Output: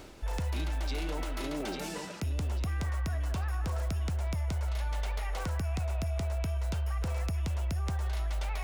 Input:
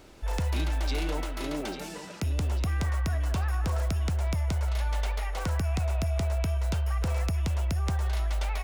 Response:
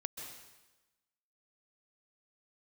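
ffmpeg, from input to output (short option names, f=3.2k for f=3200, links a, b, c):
-af "areverse,acompressor=mode=upward:threshold=-33dB:ratio=2.5,areverse,alimiter=level_in=3dB:limit=-24dB:level=0:latency=1:release=14,volume=-3dB"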